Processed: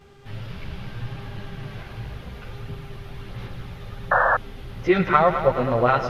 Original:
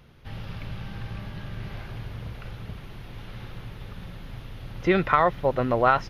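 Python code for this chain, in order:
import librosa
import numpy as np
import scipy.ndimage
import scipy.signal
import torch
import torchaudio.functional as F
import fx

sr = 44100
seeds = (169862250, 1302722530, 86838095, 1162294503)

y = fx.dmg_buzz(x, sr, base_hz=400.0, harmonics=22, level_db=-56.0, tilt_db=-7, odd_only=False)
y = fx.chorus_voices(y, sr, voices=2, hz=0.73, base_ms=12, depth_ms=4.8, mix_pct=60)
y = fx.echo_heads(y, sr, ms=105, heads='first and second', feedback_pct=59, wet_db=-13)
y = fx.spec_paint(y, sr, seeds[0], shape='noise', start_s=4.11, length_s=0.26, low_hz=490.0, high_hz=1800.0, level_db=-22.0)
y = y * 10.0 ** (4.0 / 20.0)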